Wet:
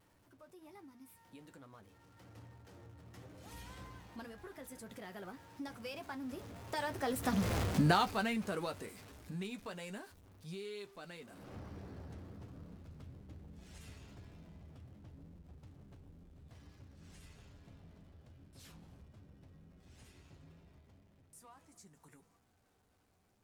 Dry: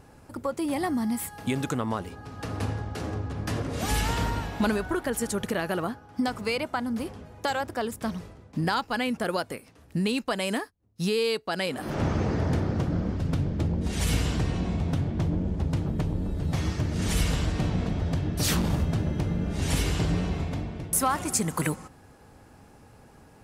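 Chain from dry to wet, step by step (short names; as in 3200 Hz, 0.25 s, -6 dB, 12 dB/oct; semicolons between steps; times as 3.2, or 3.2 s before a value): zero-crossing step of -34.5 dBFS; Doppler pass-by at 7.59, 33 m/s, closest 4.5 m; flange 1.2 Hz, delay 9.8 ms, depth 1.3 ms, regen -43%; gain +8.5 dB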